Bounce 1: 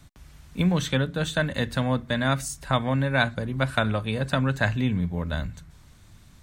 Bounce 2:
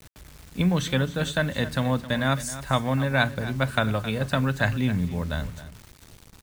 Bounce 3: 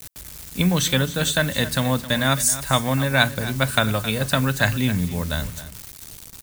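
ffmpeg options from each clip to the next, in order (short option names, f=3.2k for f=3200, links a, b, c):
-af "acrusher=bits=7:mix=0:aa=0.000001,aecho=1:1:266:0.188"
-af "crystalizer=i=3:c=0,volume=2.5dB"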